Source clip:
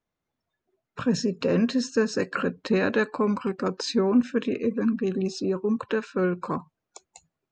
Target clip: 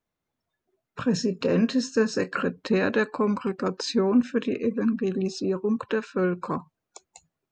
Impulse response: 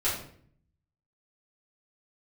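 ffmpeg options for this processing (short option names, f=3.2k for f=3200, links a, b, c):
-filter_complex "[0:a]asettb=1/sr,asplit=3[a][b][c];[a]atrim=end=1.044[d];[b]atrim=start=1.04:end=2.41,asetpts=PTS-STARTPTS,afade=t=in:d=0.004:c=qsin,afade=t=out:st=1.366:d=0.004:c=qsin,asplit=2[e][f];[f]adelay=27,volume=-12.5dB[g];[e][g]amix=inputs=2:normalize=0,atrim=end_sample=60417[h];[c]atrim=start=2.406[i];[d][h]acrossfade=d=0.004:c1=hsin:c2=qsin[j];[j][i]acrossfade=d=0.004:c1=qsin:c2=hsin"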